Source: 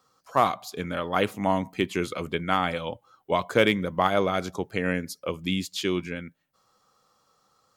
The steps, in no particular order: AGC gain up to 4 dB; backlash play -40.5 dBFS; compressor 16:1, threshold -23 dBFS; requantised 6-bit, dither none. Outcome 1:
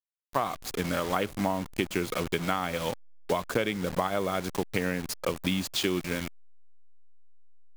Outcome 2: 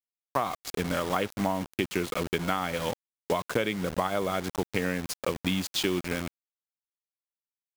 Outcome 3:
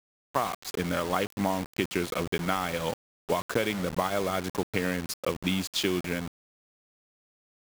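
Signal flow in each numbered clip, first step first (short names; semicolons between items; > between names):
requantised > AGC > compressor > backlash; backlash > requantised > AGC > compressor; backlash > AGC > compressor > requantised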